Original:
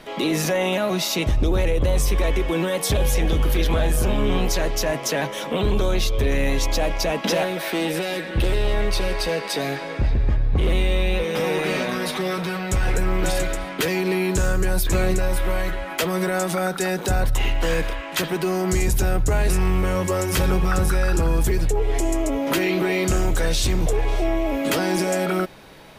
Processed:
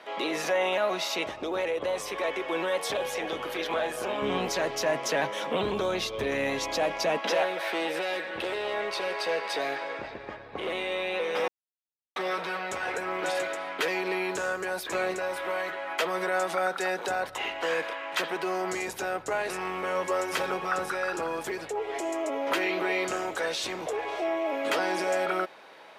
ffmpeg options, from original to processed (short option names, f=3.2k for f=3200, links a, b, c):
-filter_complex "[0:a]asettb=1/sr,asplit=3[a][b][c];[a]atrim=end=4.224[d];[b]atrim=start=4.22:end=7.18,asetpts=PTS-STARTPTS,afade=t=in:d=0.004:c=qsin,afade=t=out:st=2.956:d=0.004:c=qsin,bass=f=250:g=14,treble=f=4k:g=3[e];[c]atrim=start=7.176[f];[d][e]acrossfade=d=0.004:c1=hsin:c2=qsin[g];[g][f]acrossfade=d=0.004:c1=qsin:c2=hsin,asplit=3[h][i][j];[h]atrim=end=11.48,asetpts=PTS-STARTPTS,afade=t=out:st=11.476:d=0.004:c=hsin[k];[i]atrim=start=11.48:end=12.16,asetpts=PTS-STARTPTS,volume=0[l];[j]atrim=start=12.16,asetpts=PTS-STARTPTS,afade=t=in:d=0.004:c=hsin[m];[k][l][m]concat=n=3:v=0:a=1,highpass=580,aemphasis=mode=reproduction:type=75kf"